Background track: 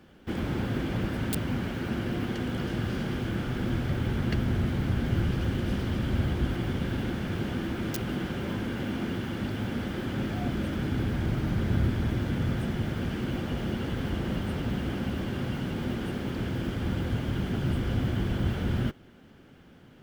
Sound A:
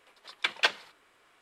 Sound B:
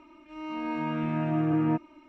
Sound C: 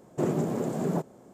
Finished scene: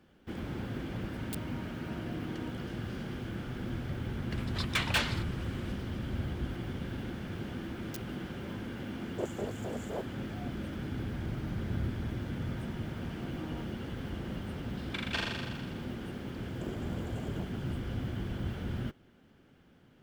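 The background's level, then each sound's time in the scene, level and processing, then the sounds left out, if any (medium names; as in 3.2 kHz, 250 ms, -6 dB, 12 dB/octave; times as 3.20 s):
background track -8 dB
0.73 s: add B -18 dB
4.31 s: add A -11 dB + overdrive pedal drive 29 dB, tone 7.2 kHz, clips at -9.5 dBFS
9.00 s: add C -10 dB + LFO high-pass square 3.9 Hz 460–6800 Hz
11.87 s: add B -15.5 dB + power-law waveshaper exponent 2
14.50 s: add A -12 dB + flutter echo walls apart 7 m, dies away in 1.5 s
16.43 s: add C -2.5 dB + compression 3:1, threshold -41 dBFS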